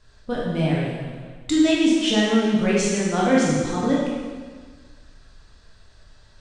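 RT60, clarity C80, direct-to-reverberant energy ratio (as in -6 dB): 1.6 s, 1.0 dB, -5.5 dB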